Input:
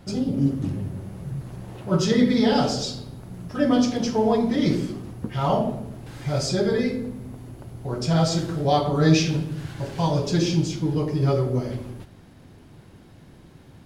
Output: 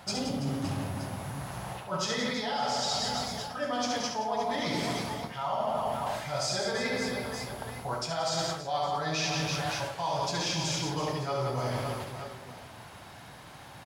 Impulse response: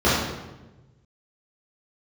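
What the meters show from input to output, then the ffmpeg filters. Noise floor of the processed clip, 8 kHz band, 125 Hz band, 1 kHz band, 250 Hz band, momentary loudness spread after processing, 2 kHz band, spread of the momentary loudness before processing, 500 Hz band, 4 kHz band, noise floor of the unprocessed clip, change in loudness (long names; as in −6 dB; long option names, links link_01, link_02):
−48 dBFS, −0.5 dB, −12.0 dB, −1.5 dB, −14.0 dB, 12 LU, 0.0 dB, 17 LU, −8.0 dB, −1.0 dB, −49 dBFS, −8.5 dB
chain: -af "highpass=60,lowshelf=frequency=530:width_type=q:width=1.5:gain=-12,aecho=1:1:70|175|332.5|568.8|923.1:0.631|0.398|0.251|0.158|0.1,areverse,acompressor=threshold=-34dB:ratio=12,areverse,volume=6.5dB"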